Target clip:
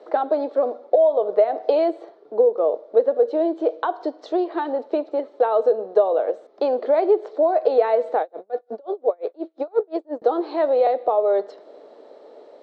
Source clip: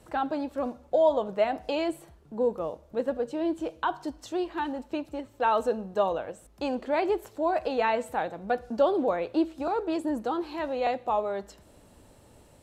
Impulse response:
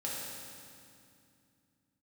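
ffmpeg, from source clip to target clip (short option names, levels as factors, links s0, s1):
-filter_complex "[0:a]equalizer=f=630:w=0.32:g=11.5,acompressor=threshold=0.126:ratio=10,highpass=f=320:w=0.5412,highpass=f=320:w=1.3066,equalizer=f=440:t=q:w=4:g=8,equalizer=f=640:t=q:w=4:g=5,equalizer=f=950:t=q:w=4:g=-5,equalizer=f=1600:t=q:w=4:g=-4,equalizer=f=2700:t=q:w=4:g=-9,equalizer=f=4000:t=q:w=4:g=4,lowpass=f=4800:w=0.5412,lowpass=f=4800:w=1.3066,asettb=1/sr,asplit=3[s0][s1][s2];[s0]atrim=end=8.214[s3];[s1]atrim=start=8.21:end=10.22,asetpts=PTS-STARTPTS,afade=t=in:d=0.004:c=qsin,afade=t=out:st=2.006:d=0.004:c=qsin,aeval=exprs='val(0)*pow(10,-35*(0.5-0.5*cos(2*PI*5.7*n/s))/20)':c=same[s4];[s2]atrim=start=10.216[s5];[s3][s4]acrossfade=d=0.004:c1=hsin:c2=qsin[s6];[s6][s5]acrossfade=d=0.004:c1=qsin:c2=hsin"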